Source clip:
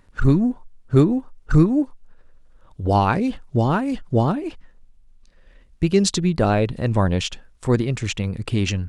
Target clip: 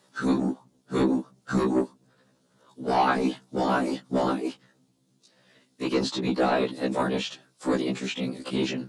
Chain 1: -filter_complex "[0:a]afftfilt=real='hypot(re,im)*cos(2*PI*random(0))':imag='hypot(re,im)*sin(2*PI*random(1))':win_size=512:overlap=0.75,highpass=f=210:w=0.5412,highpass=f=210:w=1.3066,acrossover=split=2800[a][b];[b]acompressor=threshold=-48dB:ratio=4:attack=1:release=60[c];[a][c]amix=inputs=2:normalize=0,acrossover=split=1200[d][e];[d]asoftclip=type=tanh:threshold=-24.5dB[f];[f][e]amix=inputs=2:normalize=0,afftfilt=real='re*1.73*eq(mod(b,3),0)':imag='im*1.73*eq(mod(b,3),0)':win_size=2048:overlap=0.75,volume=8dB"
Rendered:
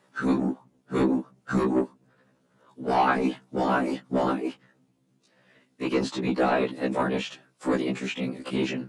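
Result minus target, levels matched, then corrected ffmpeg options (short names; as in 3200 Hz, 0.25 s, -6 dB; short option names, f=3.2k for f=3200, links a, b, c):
8000 Hz band -3.5 dB
-filter_complex "[0:a]afftfilt=real='hypot(re,im)*cos(2*PI*random(0))':imag='hypot(re,im)*sin(2*PI*random(1))':win_size=512:overlap=0.75,highpass=f=210:w=0.5412,highpass=f=210:w=1.3066,highshelf=f=3.1k:t=q:w=1.5:g=6.5,acrossover=split=2800[a][b];[b]acompressor=threshold=-48dB:ratio=4:attack=1:release=60[c];[a][c]amix=inputs=2:normalize=0,acrossover=split=1200[d][e];[d]asoftclip=type=tanh:threshold=-24.5dB[f];[f][e]amix=inputs=2:normalize=0,afftfilt=real='re*1.73*eq(mod(b,3),0)':imag='im*1.73*eq(mod(b,3),0)':win_size=2048:overlap=0.75,volume=8dB"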